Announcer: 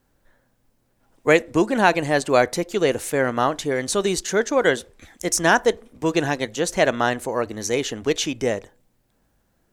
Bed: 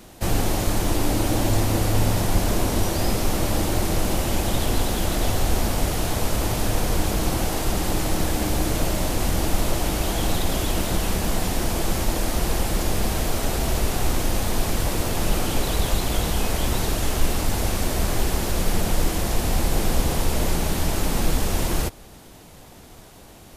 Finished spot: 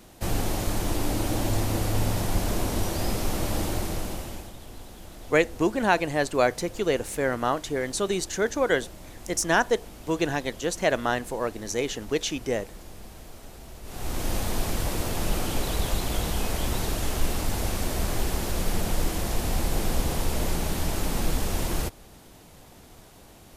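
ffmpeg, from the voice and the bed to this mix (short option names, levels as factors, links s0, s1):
-filter_complex "[0:a]adelay=4050,volume=0.562[s0];[1:a]volume=3.76,afade=t=out:st=3.65:d=0.88:silence=0.158489,afade=t=in:st=13.83:d=0.49:silence=0.149624[s1];[s0][s1]amix=inputs=2:normalize=0"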